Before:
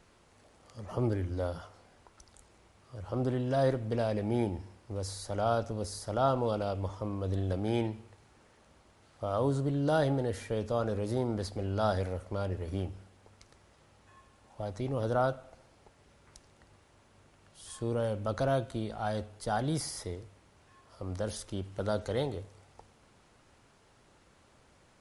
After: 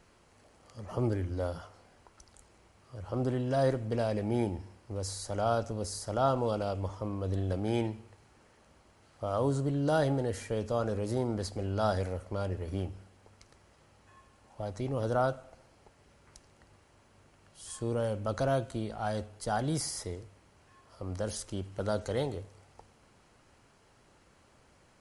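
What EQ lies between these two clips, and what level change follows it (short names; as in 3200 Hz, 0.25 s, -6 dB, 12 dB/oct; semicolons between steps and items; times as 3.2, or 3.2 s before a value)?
notch 3600 Hz, Q 14; dynamic EQ 7400 Hz, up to +5 dB, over -60 dBFS, Q 1.4; 0.0 dB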